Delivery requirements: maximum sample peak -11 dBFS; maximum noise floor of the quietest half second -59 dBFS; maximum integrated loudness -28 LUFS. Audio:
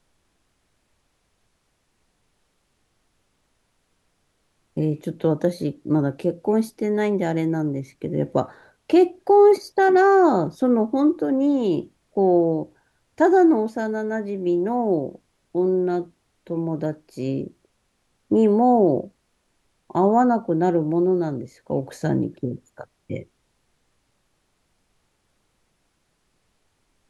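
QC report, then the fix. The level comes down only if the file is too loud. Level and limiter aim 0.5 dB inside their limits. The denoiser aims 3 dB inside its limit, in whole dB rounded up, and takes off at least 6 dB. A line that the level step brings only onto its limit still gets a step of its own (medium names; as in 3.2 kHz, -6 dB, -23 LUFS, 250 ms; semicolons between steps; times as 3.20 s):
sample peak -6.0 dBFS: fail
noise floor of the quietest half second -69 dBFS: pass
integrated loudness -21.0 LUFS: fail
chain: trim -7.5 dB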